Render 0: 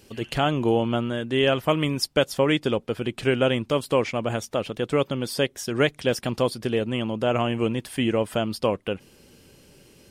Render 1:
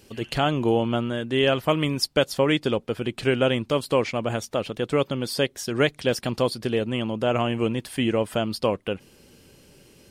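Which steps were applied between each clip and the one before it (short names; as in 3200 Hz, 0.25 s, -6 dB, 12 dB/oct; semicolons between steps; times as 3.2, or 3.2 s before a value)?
dynamic EQ 4300 Hz, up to +5 dB, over -50 dBFS, Q 4.8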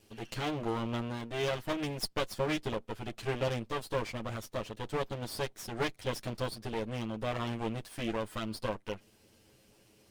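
minimum comb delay 9.4 ms; gain -9 dB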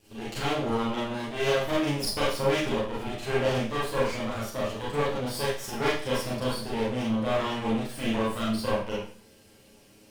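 Schroeder reverb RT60 0.46 s, combs from 28 ms, DRR -6.5 dB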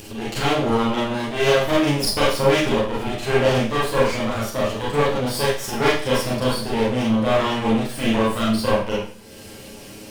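upward compressor, threshold -37 dBFS; gain +8 dB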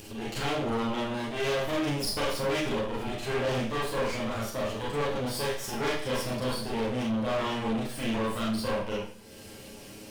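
soft clip -17.5 dBFS, distortion -11 dB; gain -6.5 dB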